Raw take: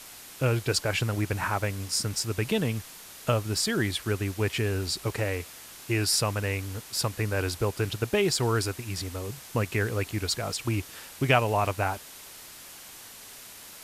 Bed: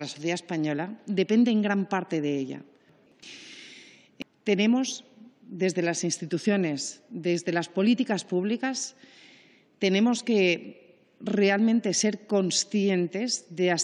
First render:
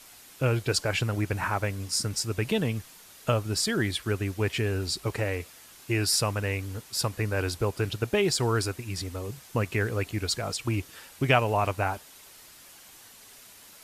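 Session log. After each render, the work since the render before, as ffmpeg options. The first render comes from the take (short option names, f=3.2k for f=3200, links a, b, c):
-af "afftdn=nr=6:nf=-46"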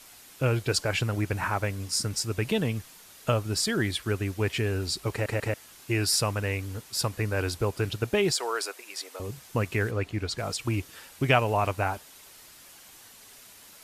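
-filter_complex "[0:a]asettb=1/sr,asplit=3[a][b][c];[a]atrim=end=8.324[d];[b]atrim=start=8.32:end=9.2,asetpts=PTS-STARTPTS,afade=t=in:d=0.004:c=qsin,afade=t=out:st=0.876:d=0.004:c=qsin,highpass=f=460:w=0.5412,highpass=f=460:w=1.3066[e];[c]atrim=start=9.196[f];[d][e]acrossfade=d=0.004:c1=hsin:c2=qsin[g];[g][f]acrossfade=d=0.004:c1=qsin:c2=hsin,asplit=3[h][i][j];[h]afade=t=out:st=9.9:d=0.02[k];[i]aemphasis=mode=reproduction:type=50kf,afade=t=in:st=9.9:d=0.02,afade=t=out:st=10.37:d=0.02[l];[j]afade=t=in:st=10.37:d=0.02[m];[k][l][m]amix=inputs=3:normalize=0,asplit=4[n][o][p][q];[n]atrim=end=5.262[r];[o]atrim=start=5.118:end=5.262[s];[p]atrim=start=5.118:end=5.262[t];[q]atrim=start=5.538[u];[r][s]acrossfade=d=0.004:c1=hsin:c2=hsin[v];[v][t]acrossfade=d=0.004:c1=hsin:c2=hsin[w];[w][u]acrossfade=d=0.004:c1=hsin:c2=hsin"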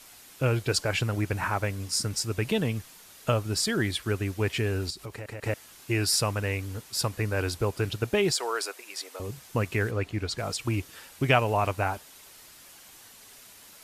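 -filter_complex "[0:a]asettb=1/sr,asplit=3[a][b][c];[a]atrim=end=4.904[d];[b]atrim=start=4.9:end=5.44,asetpts=PTS-STARTPTS,afade=t=in:d=0.004:c=qsin,afade=t=out:st=0.536:d=0.004:c=qsin,acompressor=threshold=-38dB:ratio=3:attack=3.2:release=140:knee=1:detection=peak[e];[c]atrim=start=5.436[f];[d][e]acrossfade=d=0.004:c1=hsin:c2=qsin[g];[g][f]acrossfade=d=0.004:c1=qsin:c2=hsin"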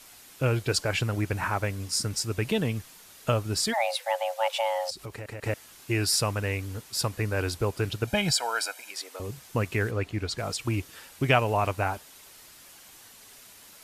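-filter_complex "[0:a]asplit=3[a][b][c];[a]afade=t=out:st=3.72:d=0.02[d];[b]afreqshift=450,afade=t=in:st=3.72:d=0.02,afade=t=out:st=4.9:d=0.02[e];[c]afade=t=in:st=4.9:d=0.02[f];[d][e][f]amix=inputs=3:normalize=0,asettb=1/sr,asplit=3[g][h][i];[g]atrim=end=8.074[j];[h]atrim=start=8.07:end=8.91,asetpts=PTS-STARTPTS,afade=t=in:d=0.004:c=qsin,afade=t=out:st=0.836:d=0.004:c=qsin,aecho=1:1:1.3:0.87,atrim=end_sample=37044[k];[i]atrim=start=8.906[l];[j][k]acrossfade=d=0.004:c1=hsin:c2=qsin[m];[m][l]acrossfade=d=0.004:c1=qsin:c2=hsin"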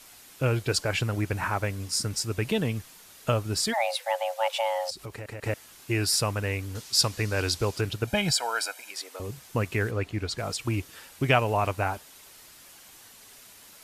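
-filter_complex "[0:a]asettb=1/sr,asplit=3[a][b][c];[a]atrim=end=6.754[d];[b]atrim=start=6.75:end=7.81,asetpts=PTS-STARTPTS,afade=t=in:d=0.004:c=qsin,afade=t=out:st=1.056:d=0.004:c=qsin,equalizer=f=5.1k:w=0.76:g=9[e];[c]atrim=start=7.806[f];[d][e]acrossfade=d=0.004:c1=hsin:c2=qsin[g];[g][f]acrossfade=d=0.004:c1=qsin:c2=hsin"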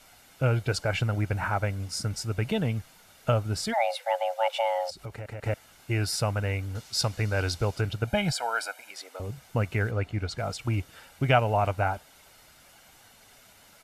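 -af "highshelf=f=3.4k:g=-9,aecho=1:1:1.4:0.38"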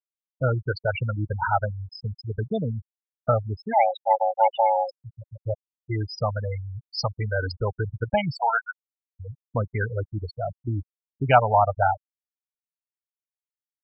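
-af "afftfilt=real='re*gte(hypot(re,im),0.112)':imag='im*gte(hypot(re,im),0.112)':win_size=1024:overlap=0.75,equalizer=f=970:t=o:w=1.2:g=10.5"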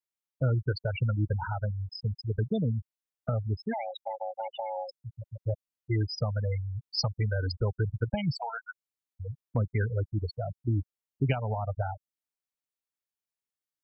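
-filter_complex "[0:a]alimiter=limit=-14dB:level=0:latency=1:release=140,acrossover=split=370|3000[a][b][c];[b]acompressor=threshold=-38dB:ratio=4[d];[a][d][c]amix=inputs=3:normalize=0"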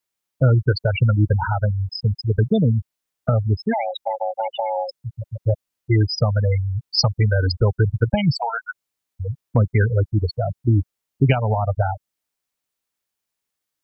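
-af "volume=11dB,alimiter=limit=-3dB:level=0:latency=1"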